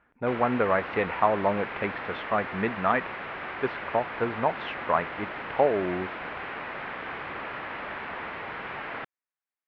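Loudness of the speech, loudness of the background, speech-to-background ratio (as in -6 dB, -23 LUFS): -28.0 LUFS, -35.5 LUFS, 7.5 dB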